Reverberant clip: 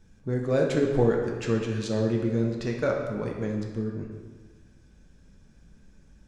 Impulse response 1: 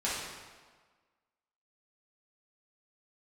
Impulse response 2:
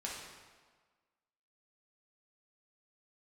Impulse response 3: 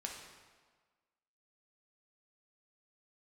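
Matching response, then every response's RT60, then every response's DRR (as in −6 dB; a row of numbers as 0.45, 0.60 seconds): 3; 1.5, 1.5, 1.5 seconds; −9.5, −5.0, −0.5 decibels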